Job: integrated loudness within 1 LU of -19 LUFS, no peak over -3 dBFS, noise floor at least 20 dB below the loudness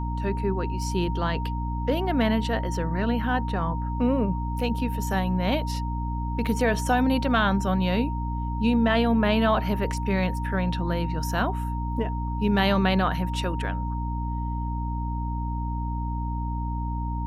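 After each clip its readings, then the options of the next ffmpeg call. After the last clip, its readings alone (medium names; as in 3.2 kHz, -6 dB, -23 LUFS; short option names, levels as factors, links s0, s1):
hum 60 Hz; highest harmonic 300 Hz; hum level -26 dBFS; steady tone 930 Hz; tone level -34 dBFS; loudness -26.0 LUFS; peak level -8.0 dBFS; loudness target -19.0 LUFS
-> -af "bandreject=f=60:t=h:w=4,bandreject=f=120:t=h:w=4,bandreject=f=180:t=h:w=4,bandreject=f=240:t=h:w=4,bandreject=f=300:t=h:w=4"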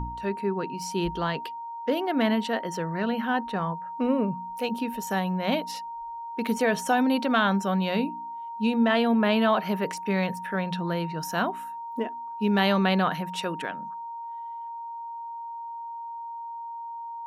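hum not found; steady tone 930 Hz; tone level -34 dBFS
-> -af "bandreject=f=930:w=30"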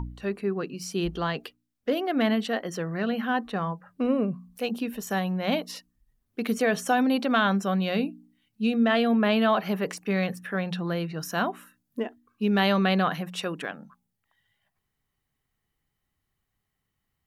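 steady tone not found; loudness -27.0 LUFS; peak level -8.5 dBFS; loudness target -19.0 LUFS
-> -af "volume=2.51,alimiter=limit=0.708:level=0:latency=1"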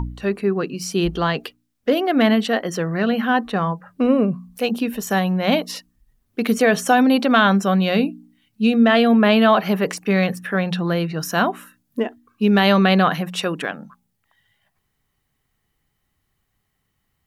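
loudness -19.0 LUFS; peak level -3.0 dBFS; noise floor -73 dBFS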